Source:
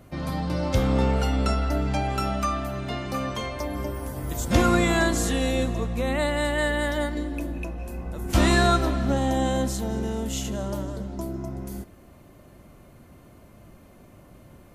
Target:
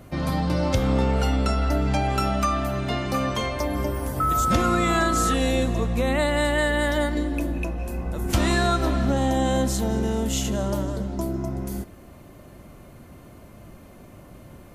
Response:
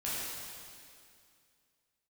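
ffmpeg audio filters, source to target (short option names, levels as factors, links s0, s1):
-filter_complex "[0:a]asettb=1/sr,asplit=3[s0][s1][s2];[s0]atrim=end=4.204[s3];[s1]atrim=start=4.2:end=5.34,asetpts=PTS-STARTPTS,afade=t=in:d=0.004:c=qsin,afade=t=out:st=1.136:d=0.004:c=qsin,aeval=exprs='val(0)+0.0708*sin(2*PI*1300*n/s)':c=same[s4];[s2]atrim=start=5.336[s5];[s3][s4]acrossfade=d=0.004:c1=hsin:c2=qsin[s6];[s6][s5]acrossfade=d=0.004:c1=qsin:c2=hsin,acompressor=threshold=0.0794:ratio=6,volume=1.68"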